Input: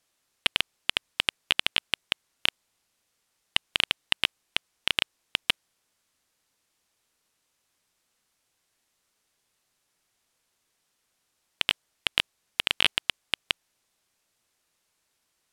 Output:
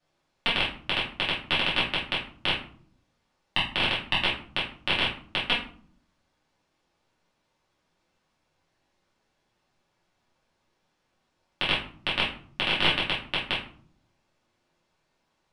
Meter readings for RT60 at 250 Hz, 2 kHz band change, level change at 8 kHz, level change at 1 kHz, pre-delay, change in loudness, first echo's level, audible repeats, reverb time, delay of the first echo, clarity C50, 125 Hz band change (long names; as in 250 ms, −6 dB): 0.90 s, +2.0 dB, −11.5 dB, +7.0 dB, 3 ms, +1.0 dB, no echo audible, no echo audible, 0.50 s, no echo audible, 6.0 dB, +10.5 dB